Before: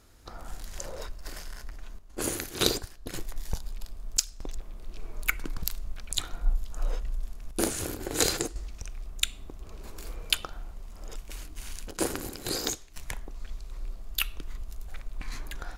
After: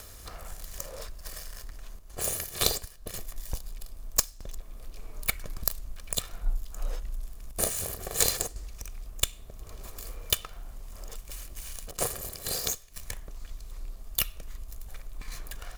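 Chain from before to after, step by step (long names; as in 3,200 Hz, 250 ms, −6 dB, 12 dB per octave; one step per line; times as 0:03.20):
lower of the sound and its delayed copy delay 1.7 ms
high-shelf EQ 7,500 Hz +11 dB
upward compression, threshold −32 dBFS
level −2.5 dB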